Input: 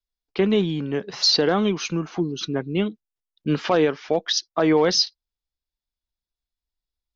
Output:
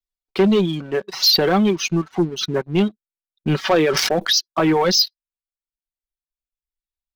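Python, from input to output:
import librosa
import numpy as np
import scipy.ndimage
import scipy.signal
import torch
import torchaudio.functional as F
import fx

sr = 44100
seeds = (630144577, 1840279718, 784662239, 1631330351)

y = fx.dereverb_blind(x, sr, rt60_s=1.5)
y = y + 0.51 * np.pad(y, (int(5.3 * sr / 1000.0), 0))[:len(y)]
y = fx.leveller(y, sr, passes=2)
y = fx.sustainer(y, sr, db_per_s=21.0, at=(3.69, 4.37))
y = y * 10.0 ** (-2.0 / 20.0)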